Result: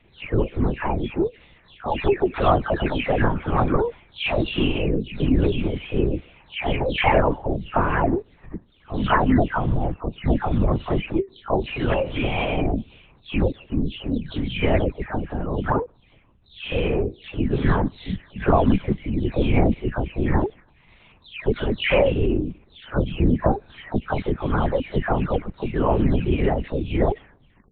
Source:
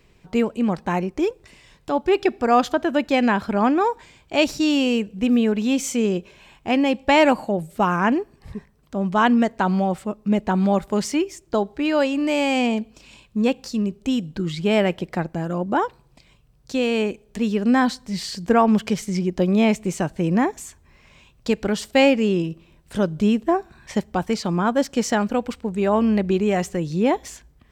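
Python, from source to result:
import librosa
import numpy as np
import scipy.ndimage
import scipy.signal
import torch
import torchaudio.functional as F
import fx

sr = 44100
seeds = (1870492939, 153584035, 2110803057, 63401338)

y = fx.spec_delay(x, sr, highs='early', ms=433)
y = fx.lpc_vocoder(y, sr, seeds[0], excitation='whisper', order=10)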